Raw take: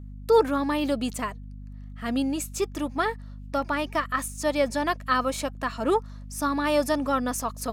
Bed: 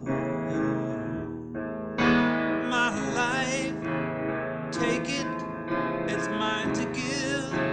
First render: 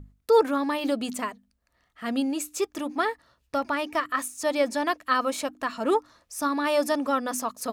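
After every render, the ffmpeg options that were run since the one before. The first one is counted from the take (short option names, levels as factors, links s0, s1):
-af "bandreject=f=50:t=h:w=6,bandreject=f=100:t=h:w=6,bandreject=f=150:t=h:w=6,bandreject=f=200:t=h:w=6,bandreject=f=250:t=h:w=6,bandreject=f=300:t=h:w=6"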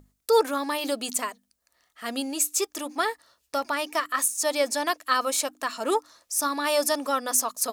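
-af "bass=f=250:g=-13,treble=f=4000:g=11"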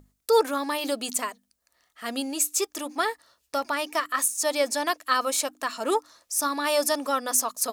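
-af anull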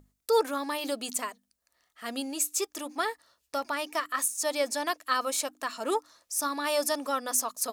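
-af "volume=0.631"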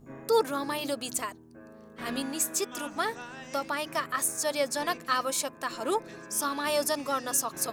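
-filter_complex "[1:a]volume=0.15[s0];[0:a][s0]amix=inputs=2:normalize=0"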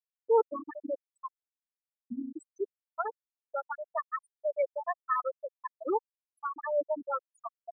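-af "afftfilt=real='re*gte(hypot(re,im),0.2)':imag='im*gte(hypot(re,im),0.2)':win_size=1024:overlap=0.75,lowpass=2100"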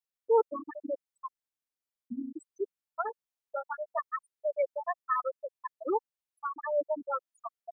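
-filter_complex "[0:a]asettb=1/sr,asplit=3[s0][s1][s2];[s0]atrim=end=3.074[s3];[s1]atrim=start=3.07:end=3.99,asetpts=PTS-STARTPTS,afade=t=in:d=0.004:c=qsin,afade=t=out:st=0.916:d=0.004:c=qsin,asplit=2[s4][s5];[s5]adelay=15,volume=0.531[s6];[s4][s6]amix=inputs=2:normalize=0,atrim=end_sample=40572[s7];[s2]atrim=start=3.986[s8];[s3][s7]acrossfade=d=0.004:c1=hsin:c2=qsin[s9];[s9][s8]acrossfade=d=0.004:c1=qsin:c2=hsin"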